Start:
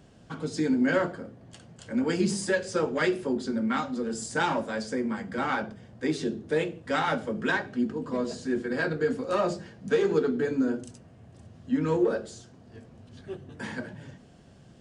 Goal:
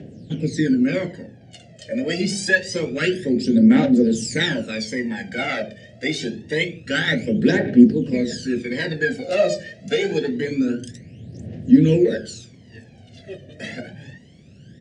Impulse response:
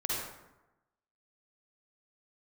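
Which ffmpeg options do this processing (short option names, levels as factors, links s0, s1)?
-filter_complex "[0:a]aphaser=in_gain=1:out_gain=1:delay=1.7:decay=0.78:speed=0.26:type=triangular,highpass=120,lowpass=6400,acrossover=split=1100[s0][s1];[s1]dynaudnorm=f=400:g=11:m=1.78[s2];[s0][s2]amix=inputs=2:normalize=0,firequalizer=gain_entry='entry(550,0);entry(1100,-27);entry(1800,-1);entry(3500,-3)':delay=0.05:min_phase=1,volume=2.11"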